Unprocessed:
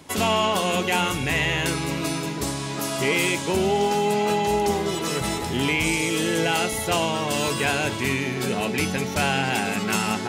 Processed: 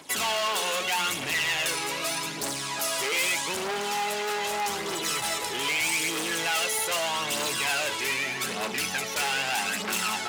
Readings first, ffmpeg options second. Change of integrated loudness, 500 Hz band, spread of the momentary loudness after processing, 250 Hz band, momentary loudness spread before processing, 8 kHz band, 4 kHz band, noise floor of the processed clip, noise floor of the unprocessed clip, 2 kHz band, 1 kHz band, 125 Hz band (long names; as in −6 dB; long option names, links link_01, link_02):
−3.5 dB, −9.0 dB, 4 LU, −14.0 dB, 5 LU, +1.0 dB, −0.5 dB, −34 dBFS, −30 dBFS, −2.0 dB, −5.0 dB, −17.0 dB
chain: -af "aphaser=in_gain=1:out_gain=1:delay=2.4:decay=0.52:speed=0.81:type=triangular,asoftclip=type=hard:threshold=-23.5dB,highpass=frequency=1100:poles=1,volume=2dB"